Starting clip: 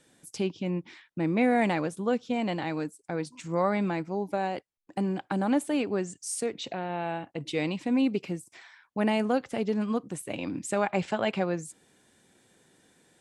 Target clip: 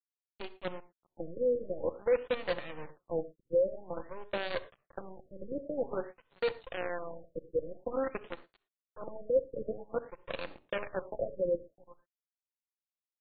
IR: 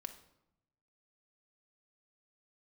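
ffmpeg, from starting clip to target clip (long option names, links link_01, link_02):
-filter_complex "[0:a]aeval=exprs='val(0)+0.00562*(sin(2*PI*60*n/s)+sin(2*PI*2*60*n/s)/2+sin(2*PI*3*60*n/s)/3+sin(2*PI*4*60*n/s)/4+sin(2*PI*5*60*n/s)/5)':channel_layout=same,alimiter=limit=-18.5dB:level=0:latency=1:release=125,asplit=3[link_01][link_02][link_03];[link_01]bandpass=frequency=530:width_type=q:width=8,volume=0dB[link_04];[link_02]bandpass=frequency=1840:width_type=q:width=8,volume=-6dB[link_05];[link_03]bandpass=frequency=2480:width_type=q:width=8,volume=-9dB[link_06];[link_04][link_05][link_06]amix=inputs=3:normalize=0,aecho=1:1:386|772:0.141|0.0325,aeval=exprs='sgn(val(0))*max(abs(val(0))-0.00224,0)':channel_layout=same,acrusher=bits=7:dc=4:mix=0:aa=0.000001,asplit=2[link_07][link_08];[1:a]atrim=start_sample=2205,atrim=end_sample=3528,asetrate=28224,aresample=44100[link_09];[link_08][link_09]afir=irnorm=-1:irlink=0,volume=3.5dB[link_10];[link_07][link_10]amix=inputs=2:normalize=0,afftfilt=real='re*lt(b*sr/1024,550*pow(4700/550,0.5+0.5*sin(2*PI*0.5*pts/sr)))':imag='im*lt(b*sr/1024,550*pow(4700/550,0.5+0.5*sin(2*PI*0.5*pts/sr)))':win_size=1024:overlap=0.75"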